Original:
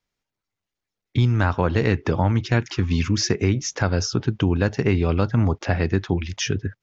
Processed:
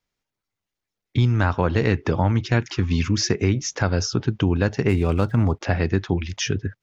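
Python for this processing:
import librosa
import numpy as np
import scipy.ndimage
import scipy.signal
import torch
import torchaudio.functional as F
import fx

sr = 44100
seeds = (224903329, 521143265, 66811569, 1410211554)

y = fx.median_filter(x, sr, points=9, at=(4.88, 5.6), fade=0.02)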